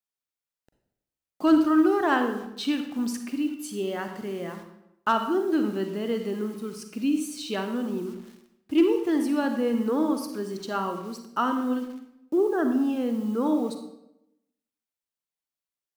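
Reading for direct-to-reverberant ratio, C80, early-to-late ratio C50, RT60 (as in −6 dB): 6.0 dB, 9.5 dB, 7.0 dB, 0.85 s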